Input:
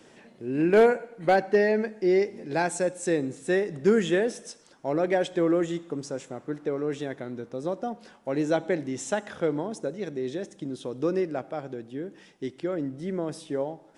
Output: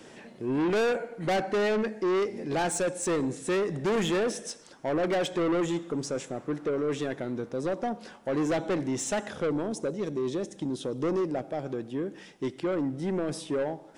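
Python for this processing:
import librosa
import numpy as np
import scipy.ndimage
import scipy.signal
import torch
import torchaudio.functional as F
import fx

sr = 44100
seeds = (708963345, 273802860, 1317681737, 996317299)

y = fx.dynamic_eq(x, sr, hz=1600.0, q=0.76, threshold_db=-47.0, ratio=4.0, max_db=-7, at=(9.26, 11.66))
y = 10.0 ** (-28.0 / 20.0) * np.tanh(y / 10.0 ** (-28.0 / 20.0))
y = y * librosa.db_to_amplitude(4.5)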